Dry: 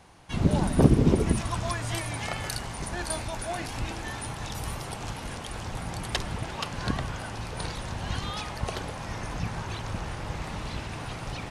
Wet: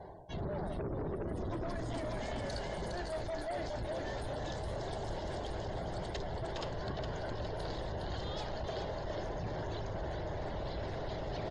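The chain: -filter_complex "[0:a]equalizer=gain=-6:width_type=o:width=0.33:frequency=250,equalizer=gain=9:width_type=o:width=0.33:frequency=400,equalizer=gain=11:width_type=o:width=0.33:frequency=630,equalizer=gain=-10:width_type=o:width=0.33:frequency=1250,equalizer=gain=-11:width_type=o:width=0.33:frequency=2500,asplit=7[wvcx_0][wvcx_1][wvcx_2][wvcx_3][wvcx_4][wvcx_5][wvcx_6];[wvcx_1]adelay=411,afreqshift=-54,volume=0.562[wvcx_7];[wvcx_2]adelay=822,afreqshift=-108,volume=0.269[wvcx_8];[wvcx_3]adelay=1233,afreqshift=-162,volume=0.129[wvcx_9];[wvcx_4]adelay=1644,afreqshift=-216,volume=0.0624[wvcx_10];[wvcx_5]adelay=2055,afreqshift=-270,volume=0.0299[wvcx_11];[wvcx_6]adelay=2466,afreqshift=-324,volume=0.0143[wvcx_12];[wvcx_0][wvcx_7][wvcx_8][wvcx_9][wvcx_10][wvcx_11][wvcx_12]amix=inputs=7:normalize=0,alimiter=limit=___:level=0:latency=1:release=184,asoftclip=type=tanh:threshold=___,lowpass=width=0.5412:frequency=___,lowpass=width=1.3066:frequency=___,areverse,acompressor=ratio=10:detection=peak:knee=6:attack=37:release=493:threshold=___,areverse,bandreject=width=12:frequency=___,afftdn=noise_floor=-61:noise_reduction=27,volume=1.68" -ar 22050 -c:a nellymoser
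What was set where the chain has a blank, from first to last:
0.188, 0.0447, 7600, 7600, 0.00891, 5700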